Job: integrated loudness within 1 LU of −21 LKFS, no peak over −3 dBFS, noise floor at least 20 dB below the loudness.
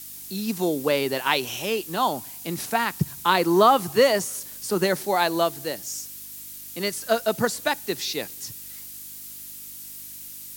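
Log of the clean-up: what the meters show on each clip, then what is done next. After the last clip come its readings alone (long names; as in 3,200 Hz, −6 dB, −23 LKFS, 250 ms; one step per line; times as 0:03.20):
mains hum 50 Hz; hum harmonics up to 300 Hz; level of the hum −58 dBFS; background noise floor −40 dBFS; target noise floor −44 dBFS; integrated loudness −24.0 LKFS; sample peak −4.5 dBFS; target loudness −21.0 LKFS
→ hum removal 50 Hz, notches 6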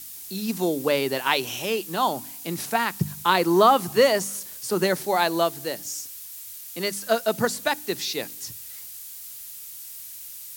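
mains hum none found; background noise floor −40 dBFS; target noise floor −44 dBFS
→ broadband denoise 6 dB, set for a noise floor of −40 dBFS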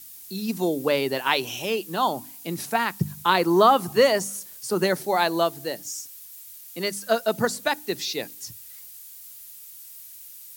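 background noise floor −44 dBFS; integrated loudness −24.0 LKFS; sample peak −4.5 dBFS; target loudness −21.0 LKFS
→ level +3 dB
brickwall limiter −3 dBFS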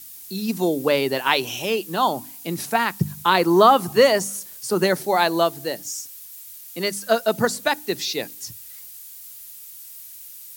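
integrated loudness −21.0 LKFS; sample peak −3.0 dBFS; background noise floor −41 dBFS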